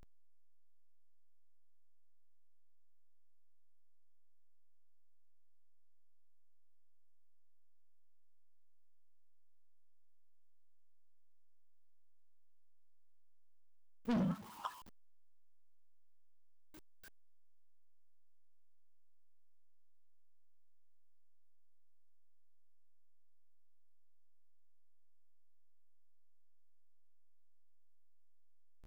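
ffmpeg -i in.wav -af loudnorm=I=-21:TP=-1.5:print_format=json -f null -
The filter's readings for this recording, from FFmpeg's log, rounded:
"input_i" : "-40.1",
"input_tp" : "-31.4",
"input_lra" : "0.0",
"input_thresh" : "-53.7",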